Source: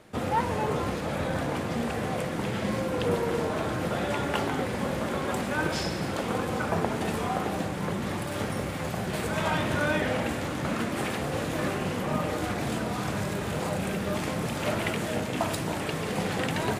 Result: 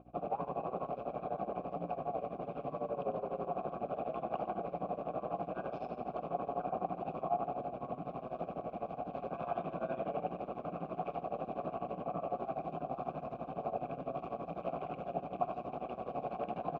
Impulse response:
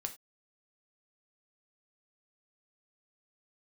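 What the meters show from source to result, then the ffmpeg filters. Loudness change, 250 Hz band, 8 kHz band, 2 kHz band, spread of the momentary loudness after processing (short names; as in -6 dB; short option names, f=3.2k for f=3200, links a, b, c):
-10.5 dB, -14.5 dB, under -40 dB, -24.5 dB, 4 LU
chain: -filter_complex "[0:a]lowpass=5.4k,bandreject=f=1.8k:w=14,aecho=1:1:3.9:0.45,aeval=exprs='val(0)*sin(2*PI*61*n/s)':c=same,equalizer=f=170:w=2.4:g=9,aeval=exprs='val(0)+0.0126*(sin(2*PI*60*n/s)+sin(2*PI*2*60*n/s)/2+sin(2*PI*3*60*n/s)/3+sin(2*PI*4*60*n/s)/4+sin(2*PI*5*60*n/s)/5)':c=same,tremolo=f=12:d=0.88,aresample=16000,asoftclip=type=tanh:threshold=-24dB,aresample=44100,asplit=3[a][b][c];[a]bandpass=f=730:t=q:w=8,volume=0dB[d];[b]bandpass=f=1.09k:t=q:w=8,volume=-6dB[e];[c]bandpass=f=2.44k:t=q:w=8,volume=-9dB[f];[d][e][f]amix=inputs=3:normalize=0,tiltshelf=f=970:g=9.5,aecho=1:1:98:0.224,volume=5.5dB"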